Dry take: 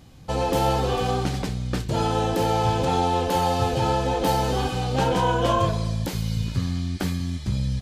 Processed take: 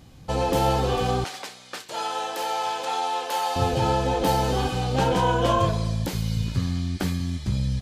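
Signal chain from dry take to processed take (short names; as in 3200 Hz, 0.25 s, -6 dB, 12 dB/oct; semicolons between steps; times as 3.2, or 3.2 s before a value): 1.24–3.56 HPF 780 Hz 12 dB/oct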